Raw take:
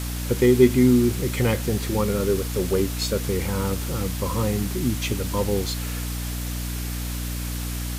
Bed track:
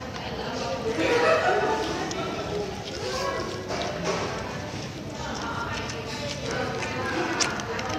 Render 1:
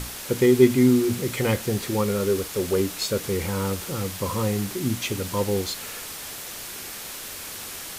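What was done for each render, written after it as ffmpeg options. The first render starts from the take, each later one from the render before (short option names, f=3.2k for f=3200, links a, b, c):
-af "bandreject=f=60:t=h:w=6,bandreject=f=120:t=h:w=6,bandreject=f=180:t=h:w=6,bandreject=f=240:t=h:w=6,bandreject=f=300:t=h:w=6"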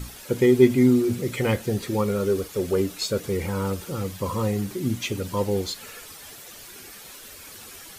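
-af "afftdn=nr=10:nf=-37"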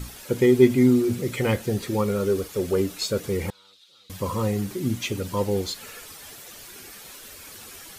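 -filter_complex "[0:a]asettb=1/sr,asplit=3[a][b][c];[a]atrim=end=3.504[d];[b]atrim=start=3.5:end=4.1,asetpts=PTS-STARTPTS,afade=t=in:d=0.004:c=qsin,afade=t=out:st=0.596:d=0.004:c=qsin,bandpass=f=3.8k:t=q:w=7.6[e];[c]atrim=start=4.096[f];[d][e]acrossfade=d=0.004:c1=hsin:c2=qsin[g];[g][f]acrossfade=d=0.004:c1=qsin:c2=hsin"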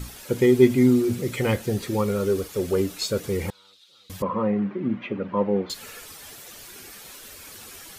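-filter_complex "[0:a]asettb=1/sr,asplit=3[a][b][c];[a]atrim=end=4.224[d];[b]atrim=start=4.22:end=5.7,asetpts=PTS-STARTPTS,afade=t=in:d=0.004:c=qsin,afade=t=out:st=1.476:d=0.004:c=qsin,highpass=200,equalizer=f=200:t=q:w=4:g=8,equalizer=f=580:t=q:w=4:g=4,equalizer=f=1.1k:t=q:w=4:g=4,lowpass=f=2.3k:w=0.5412,lowpass=f=2.3k:w=1.3066[e];[c]atrim=start=5.696[f];[d][e]acrossfade=d=0.004:c1=hsin:c2=qsin[g];[g][f]acrossfade=d=0.004:c1=qsin:c2=hsin"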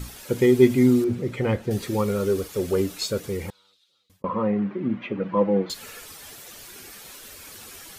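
-filter_complex "[0:a]asettb=1/sr,asplit=3[a][b][c];[a]atrim=end=1.044[d];[b]atrim=start=1.04:end=1.71,asetpts=PTS-STARTPTS,afade=t=in:d=0.004:c=qsin,afade=t=out:st=0.666:d=0.004:c=qsin,lowpass=f=1.6k:p=1[e];[c]atrim=start=1.706[f];[d][e]acrossfade=d=0.004:c1=hsin:c2=qsin[g];[g][f]acrossfade=d=0.004:c1=qsin:c2=hsin,asettb=1/sr,asplit=3[h][i][j];[h]atrim=end=5.174[k];[i]atrim=start=5.17:end=5.7,asetpts=PTS-STARTPTS,afade=t=in:d=0.004:c=qsin,afade=t=out:st=0.526:d=0.004:c=qsin,aecho=1:1:6.1:0.65,atrim=end_sample=23373[l];[j]atrim=start=5.696[m];[k][l]acrossfade=d=0.004:c1=hsin:c2=qsin[n];[n][m]acrossfade=d=0.004:c1=qsin:c2=hsin,asplit=2[o][p];[o]atrim=end=4.24,asetpts=PTS-STARTPTS,afade=t=out:st=2.98:d=1.26[q];[p]atrim=start=4.24,asetpts=PTS-STARTPTS,afade=t=in:d=0.004:c=hsin[r];[q][r]concat=n=2:v=0:a=1"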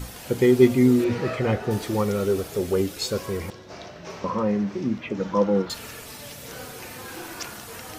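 -filter_complex "[1:a]volume=-11dB[a];[0:a][a]amix=inputs=2:normalize=0"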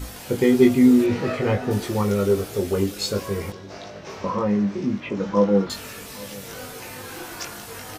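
-filter_complex "[0:a]asplit=2[a][b];[b]adelay=20,volume=-3.5dB[c];[a][c]amix=inputs=2:normalize=0,asplit=2[d][e];[e]adelay=816.3,volume=-21dB,highshelf=f=4k:g=-18.4[f];[d][f]amix=inputs=2:normalize=0"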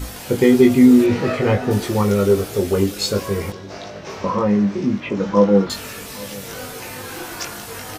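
-af "volume=4.5dB,alimiter=limit=-2dB:level=0:latency=1"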